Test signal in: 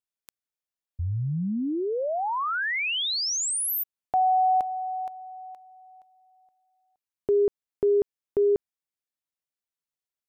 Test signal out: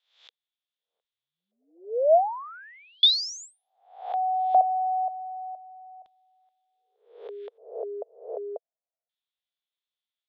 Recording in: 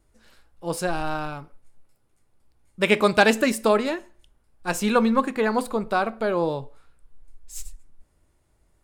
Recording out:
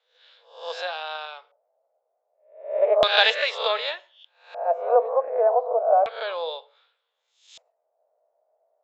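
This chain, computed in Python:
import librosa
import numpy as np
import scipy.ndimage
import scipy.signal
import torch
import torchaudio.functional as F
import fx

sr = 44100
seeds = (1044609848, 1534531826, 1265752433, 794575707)

y = fx.spec_swells(x, sr, rise_s=0.51)
y = scipy.signal.sosfilt(scipy.signal.cheby1(5, 1.0, [470.0, 7300.0], 'bandpass', fs=sr, output='sos'), y)
y = fx.filter_lfo_lowpass(y, sr, shape='square', hz=0.33, low_hz=660.0, high_hz=3500.0, q=7.6)
y = F.gain(torch.from_numpy(y), -5.0).numpy()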